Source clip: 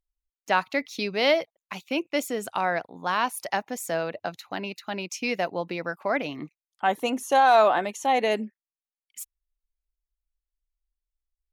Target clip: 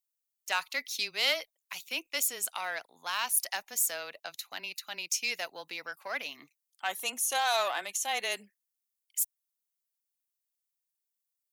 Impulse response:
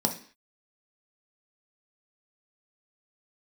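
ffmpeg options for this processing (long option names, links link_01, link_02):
-af "aeval=exprs='0.355*(cos(1*acos(clip(val(0)/0.355,-1,1)))-cos(1*PI/2))+0.02*(cos(4*acos(clip(val(0)/0.355,-1,1)))-cos(4*PI/2))':channel_layout=same,afreqshift=-13,aderivative,volume=7dB"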